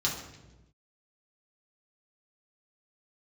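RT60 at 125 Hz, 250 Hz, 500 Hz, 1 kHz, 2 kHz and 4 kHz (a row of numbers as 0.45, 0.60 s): 1.5, 1.3, 1.2, 0.90, 0.90, 0.85 s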